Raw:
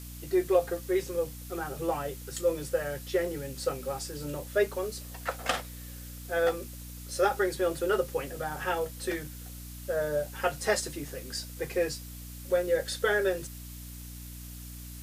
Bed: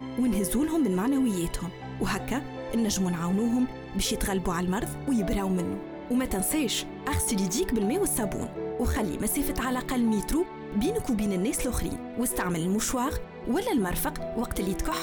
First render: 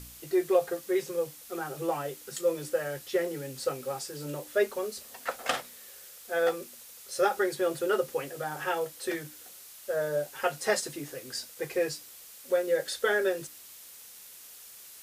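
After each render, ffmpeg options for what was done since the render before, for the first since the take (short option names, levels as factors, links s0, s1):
-af "bandreject=f=60:t=h:w=4,bandreject=f=120:t=h:w=4,bandreject=f=180:t=h:w=4,bandreject=f=240:t=h:w=4,bandreject=f=300:t=h:w=4"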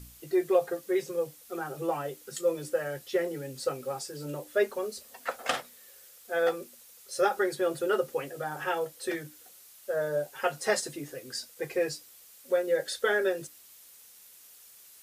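-af "afftdn=nr=6:nf=-49"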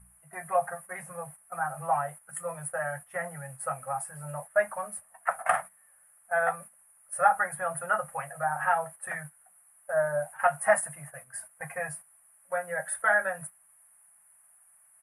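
-af "agate=range=0.316:threshold=0.00794:ratio=16:detection=peak,firequalizer=gain_entry='entry(130,0);entry(190,4);entry(280,-30);entry(400,-28);entry(640,8);entry(1800,5);entry(4000,-30);entry(6800,-17);entry(10000,14);entry(15000,-29)':delay=0.05:min_phase=1"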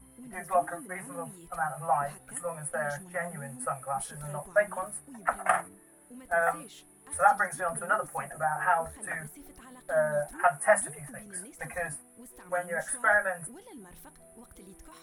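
-filter_complex "[1:a]volume=0.075[s0];[0:a][s0]amix=inputs=2:normalize=0"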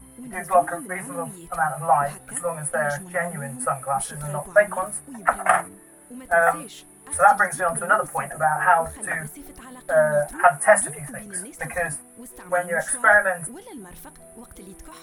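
-af "volume=2.66,alimiter=limit=0.794:level=0:latency=1"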